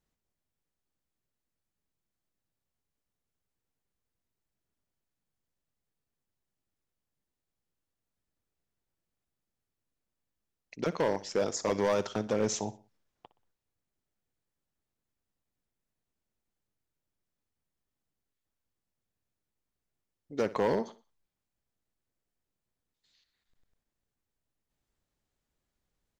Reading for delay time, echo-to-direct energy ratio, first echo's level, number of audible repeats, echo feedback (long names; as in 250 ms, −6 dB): 61 ms, −16.5 dB, −17.0 dB, 3, 38%